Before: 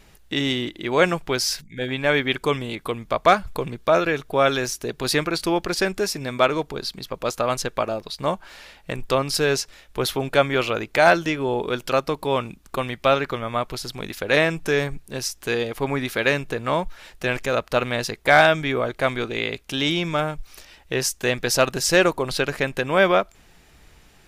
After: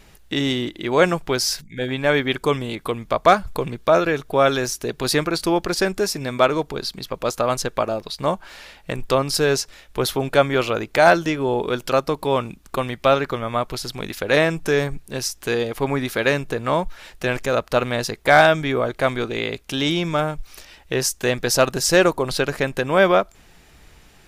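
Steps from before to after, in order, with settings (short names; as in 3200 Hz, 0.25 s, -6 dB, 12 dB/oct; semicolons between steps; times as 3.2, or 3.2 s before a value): dynamic EQ 2500 Hz, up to -4 dB, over -35 dBFS, Q 1.1; gain +2.5 dB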